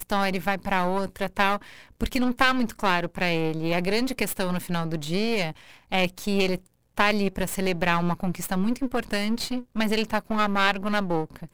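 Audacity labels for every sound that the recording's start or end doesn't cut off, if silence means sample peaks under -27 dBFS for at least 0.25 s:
2.010000	5.510000	sound
5.920000	6.560000	sound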